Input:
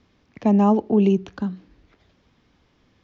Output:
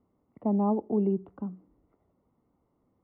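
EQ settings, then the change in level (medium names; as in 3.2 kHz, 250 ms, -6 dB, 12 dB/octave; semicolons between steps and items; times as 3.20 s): Savitzky-Golay filter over 65 samples; distance through air 440 m; bass shelf 110 Hz -10.5 dB; -6.5 dB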